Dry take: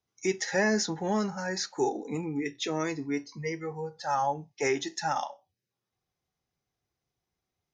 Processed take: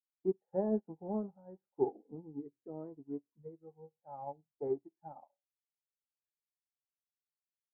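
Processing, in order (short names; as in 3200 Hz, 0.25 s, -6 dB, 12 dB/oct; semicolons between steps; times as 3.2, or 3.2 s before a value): inverse Chebyshev low-pass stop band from 2600 Hz, stop band 60 dB; upward expander 2.5:1, over -45 dBFS; gain -1.5 dB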